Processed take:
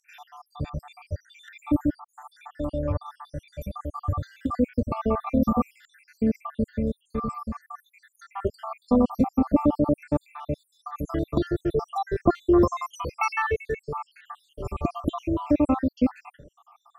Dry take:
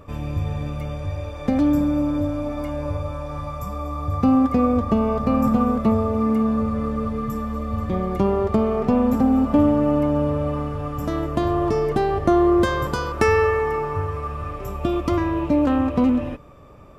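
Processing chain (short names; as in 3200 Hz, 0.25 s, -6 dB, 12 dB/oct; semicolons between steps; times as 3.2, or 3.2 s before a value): random spectral dropouts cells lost 78%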